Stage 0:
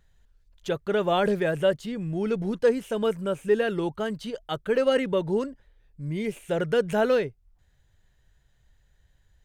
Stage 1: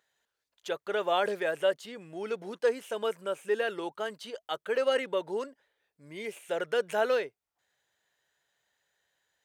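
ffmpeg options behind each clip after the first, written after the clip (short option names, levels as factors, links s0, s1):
-af "highpass=500,volume=0.794"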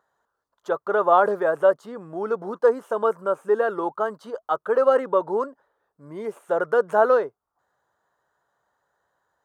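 -af "highshelf=f=1700:t=q:w=3:g=-12.5,volume=2.37"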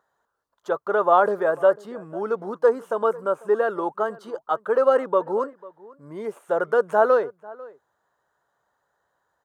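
-filter_complex "[0:a]asplit=2[s0][s1];[s1]adelay=495.6,volume=0.0891,highshelf=f=4000:g=-11.2[s2];[s0][s2]amix=inputs=2:normalize=0"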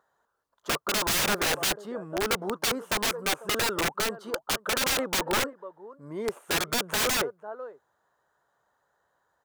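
-af "aeval=exprs='(mod(10.6*val(0)+1,2)-1)/10.6':c=same"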